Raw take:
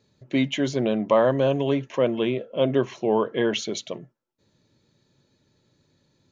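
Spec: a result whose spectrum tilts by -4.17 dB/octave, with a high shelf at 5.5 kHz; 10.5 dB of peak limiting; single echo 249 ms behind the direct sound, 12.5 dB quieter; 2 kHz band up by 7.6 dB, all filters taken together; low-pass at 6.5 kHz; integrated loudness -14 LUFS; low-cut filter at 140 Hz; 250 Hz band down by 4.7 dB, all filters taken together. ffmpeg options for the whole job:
-af "highpass=140,lowpass=6500,equalizer=f=250:t=o:g=-5.5,equalizer=f=2000:t=o:g=9,highshelf=f=5500:g=5,alimiter=limit=0.141:level=0:latency=1,aecho=1:1:249:0.237,volume=5.01"

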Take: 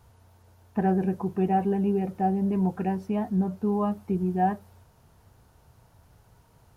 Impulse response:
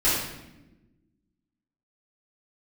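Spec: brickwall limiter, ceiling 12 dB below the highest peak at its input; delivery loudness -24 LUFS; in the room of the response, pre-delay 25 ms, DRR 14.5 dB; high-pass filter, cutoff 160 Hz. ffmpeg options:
-filter_complex "[0:a]highpass=160,alimiter=level_in=1.12:limit=0.0631:level=0:latency=1,volume=0.891,asplit=2[s0][s1];[1:a]atrim=start_sample=2205,adelay=25[s2];[s1][s2]afir=irnorm=-1:irlink=0,volume=0.0335[s3];[s0][s3]amix=inputs=2:normalize=0,volume=2.82"

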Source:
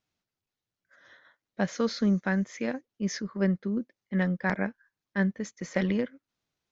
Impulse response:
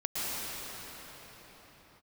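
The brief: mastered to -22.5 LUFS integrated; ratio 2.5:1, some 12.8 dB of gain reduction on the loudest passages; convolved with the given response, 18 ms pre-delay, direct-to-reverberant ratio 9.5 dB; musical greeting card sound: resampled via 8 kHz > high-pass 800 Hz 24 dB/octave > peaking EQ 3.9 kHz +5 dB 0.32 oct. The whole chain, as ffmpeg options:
-filter_complex "[0:a]acompressor=threshold=0.00891:ratio=2.5,asplit=2[s0][s1];[1:a]atrim=start_sample=2205,adelay=18[s2];[s1][s2]afir=irnorm=-1:irlink=0,volume=0.126[s3];[s0][s3]amix=inputs=2:normalize=0,aresample=8000,aresample=44100,highpass=f=800:w=0.5412,highpass=f=800:w=1.3066,equalizer=f=3900:t=o:w=0.32:g=5,volume=23.7"

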